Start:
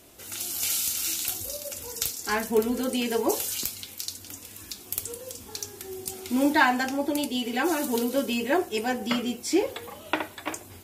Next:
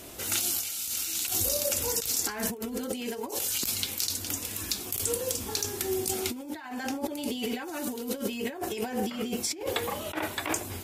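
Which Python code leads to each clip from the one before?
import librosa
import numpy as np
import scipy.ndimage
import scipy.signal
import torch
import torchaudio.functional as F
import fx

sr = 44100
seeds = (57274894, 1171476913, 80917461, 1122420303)

y = fx.over_compress(x, sr, threshold_db=-35.0, ratio=-1.0)
y = y * 10.0 ** (2.5 / 20.0)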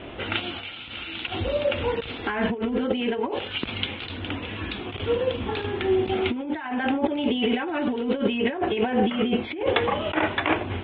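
y = scipy.signal.sosfilt(scipy.signal.butter(12, 3400.0, 'lowpass', fs=sr, output='sos'), x)
y = y * 10.0 ** (9.0 / 20.0)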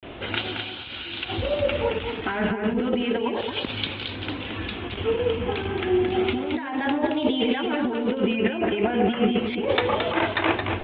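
y = fx.vibrato(x, sr, rate_hz=0.32, depth_cents=93.0)
y = y + 10.0 ** (-6.0 / 20.0) * np.pad(y, (int(221 * sr / 1000.0), 0))[:len(y)]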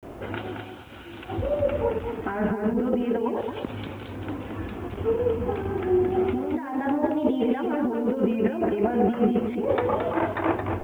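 y = scipy.signal.sosfilt(scipy.signal.butter(2, 1200.0, 'lowpass', fs=sr, output='sos'), x)
y = fx.quant_dither(y, sr, seeds[0], bits=10, dither='none')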